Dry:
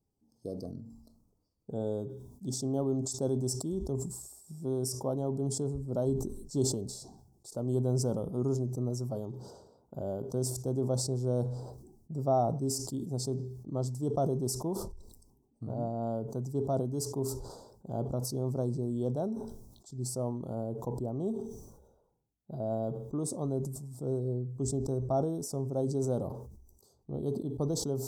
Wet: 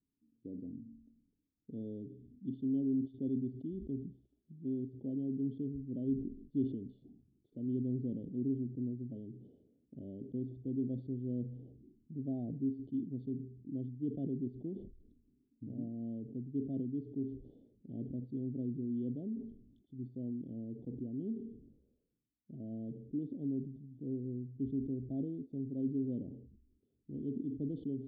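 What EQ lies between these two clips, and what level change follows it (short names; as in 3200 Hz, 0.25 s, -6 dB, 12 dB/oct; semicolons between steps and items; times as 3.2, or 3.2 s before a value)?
vocal tract filter i; Butterworth band-stop 1100 Hz, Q 1.1; bell 450 Hz +2.5 dB 0.33 oct; +1.5 dB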